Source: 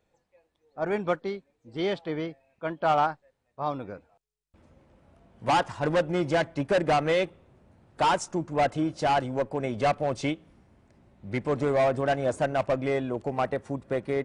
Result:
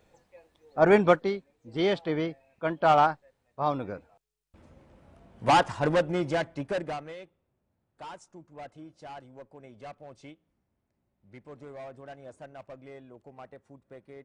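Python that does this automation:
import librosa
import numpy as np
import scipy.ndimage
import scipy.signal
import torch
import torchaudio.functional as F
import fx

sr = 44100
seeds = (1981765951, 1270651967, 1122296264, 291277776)

y = fx.gain(x, sr, db=fx.line((0.94, 9.0), (1.35, 2.5), (5.69, 2.5), (6.79, -7.0), (7.17, -19.5)))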